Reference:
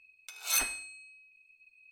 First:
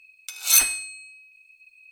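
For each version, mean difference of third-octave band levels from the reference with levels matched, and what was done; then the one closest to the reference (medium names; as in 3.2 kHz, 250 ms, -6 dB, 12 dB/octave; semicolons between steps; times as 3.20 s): 2.0 dB: treble shelf 2.6 kHz +12 dB; trim +2 dB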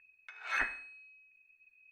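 4.0 dB: resonant low-pass 1.8 kHz, resonance Q 6.2; trim -3 dB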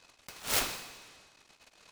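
15.0 dB: delay time shaken by noise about 1.6 kHz, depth 0.097 ms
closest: first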